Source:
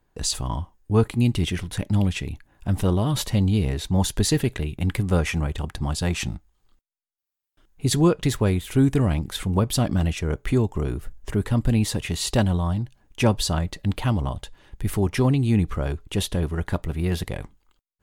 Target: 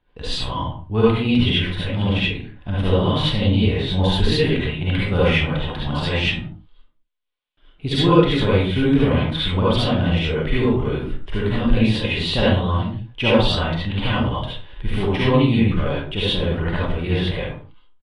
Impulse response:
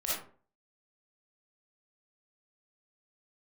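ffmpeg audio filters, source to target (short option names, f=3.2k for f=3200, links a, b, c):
-filter_complex "[0:a]highshelf=f=4.8k:t=q:w=3:g=-13.5[a];[1:a]atrim=start_sample=2205,afade=t=out:st=0.28:d=0.01,atrim=end_sample=12789,asetrate=34839,aresample=44100[b];[a][b]afir=irnorm=-1:irlink=0,aresample=22050,aresample=44100,volume=-2dB"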